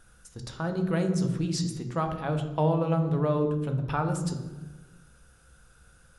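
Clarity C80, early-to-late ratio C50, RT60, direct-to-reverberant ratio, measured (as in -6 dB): 11.0 dB, 8.5 dB, 1.2 s, 5.5 dB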